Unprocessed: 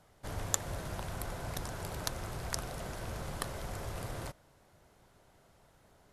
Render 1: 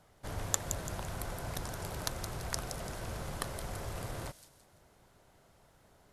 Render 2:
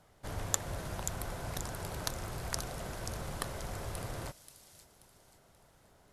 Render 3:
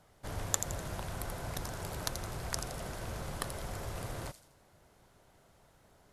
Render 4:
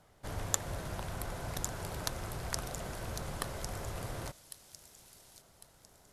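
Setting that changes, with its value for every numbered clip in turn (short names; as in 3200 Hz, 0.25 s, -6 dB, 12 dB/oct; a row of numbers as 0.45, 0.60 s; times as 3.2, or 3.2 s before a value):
thin delay, time: 169, 532, 83, 1102 ms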